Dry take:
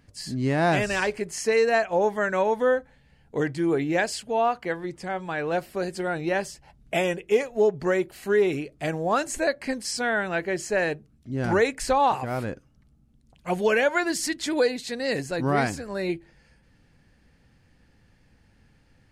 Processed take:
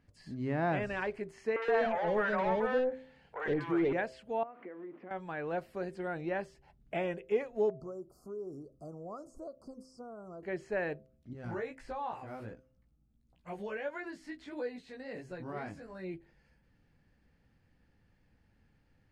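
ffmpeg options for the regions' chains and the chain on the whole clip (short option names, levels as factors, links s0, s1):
-filter_complex "[0:a]asettb=1/sr,asplit=3[s0][s1][s2];[s0]atrim=end=1.564[s3];[s1]atrim=start=1.56:end=3.93,asetpts=PTS-STARTPTS,afade=t=in:d=0.004:c=qsin,afade=t=out:st=2.366:d=0.004:c=qsin,asplit=2[s4][s5];[s5]highpass=f=720:p=1,volume=11.2,asoftclip=type=tanh:threshold=0.266[s6];[s4][s6]amix=inputs=2:normalize=0,lowpass=f=3700:p=1,volume=0.501,acrossover=split=640|2200[s7][s8][s9];[s9]adelay=60[s10];[s7]adelay=120[s11];[s11][s8][s10]amix=inputs=3:normalize=0,atrim=end_sample=104517[s12];[s2]atrim=start=3.926[s13];[s3][s12]acrossfade=d=0.004:c1=hsin:c2=qsin[s14];[s14][s13]acrossfade=d=0.004:c1=qsin:c2=hsin,asettb=1/sr,asplit=3[s15][s16][s17];[s15]atrim=end=4.434[s18];[s16]atrim=start=4.43:end=5.11,asetpts=PTS-STARTPTS,afade=t=in:d=0.004:c=qsin,afade=t=out:st=0.676:d=0.004:c=qsin,aeval=exprs='val(0)+0.5*0.0112*sgn(val(0))':c=same,acompressor=threshold=0.0251:ratio=10:attack=3.2:release=140:knee=1:detection=peak,highpass=f=230:w=0.5412,highpass=f=230:w=1.3066,equalizer=f=300:t=q:w=4:g=5,equalizer=f=850:t=q:w=4:g=-7,equalizer=f=1600:t=q:w=4:g=-7,lowpass=f=2100:w=0.5412,lowpass=f=2100:w=1.3066[s19];[s17]atrim=start=5.106[s20];[s18][s19]acrossfade=d=0.004:c1=hsin:c2=qsin[s21];[s21][s20]acrossfade=d=0.004:c1=qsin:c2=hsin,asettb=1/sr,asplit=3[s22][s23][s24];[s22]atrim=end=7.704[s25];[s23]atrim=start=7.7:end=10.43,asetpts=PTS-STARTPTS,afade=t=in:d=0.004:c=qsin,afade=t=out:st=2.726:d=0.004:c=qsin,equalizer=f=870:t=o:w=0.25:g=-11,acompressor=threshold=0.0126:ratio=2:attack=3.2:release=140:knee=1:detection=peak,asuperstop=centerf=2500:order=20:qfactor=0.75[s26];[s24]atrim=start=10.426[s27];[s25][s26]acrossfade=d=0.004:c1=hsin:c2=qsin[s28];[s28][s27]acrossfade=d=0.004:c1=qsin:c2=hsin,asettb=1/sr,asplit=3[s29][s30][s31];[s29]atrim=end=11.334[s32];[s30]atrim=start=11.33:end=16.14,asetpts=PTS-STARTPTS,afade=t=in:d=0.004:c=qsin,afade=t=out:st=4.806:d=0.004:c=qsin,acompressor=threshold=0.0282:ratio=1.5:attack=3.2:release=140:knee=1:detection=peak,flanger=delay=16.5:depth=3.1:speed=1.5,asplit=2[s33][s34];[s34]adelay=16,volume=0.224[s35];[s33][s35]amix=inputs=2:normalize=0,atrim=end_sample=212121[s36];[s31]atrim=start=16.136[s37];[s32][s36]acrossfade=d=0.004:c1=hsin:c2=qsin[s38];[s38][s37]acrossfade=d=0.004:c1=qsin:c2=hsin,highshelf=f=4400:g=-10,acrossover=split=3100[s39][s40];[s40]acompressor=threshold=0.00158:ratio=4:attack=1:release=60[s41];[s39][s41]amix=inputs=2:normalize=0,bandreject=f=129.9:t=h:w=4,bandreject=f=259.8:t=h:w=4,bandreject=f=389.7:t=h:w=4,bandreject=f=519.6:t=h:w=4,bandreject=f=649.5:t=h:w=4,volume=0.355"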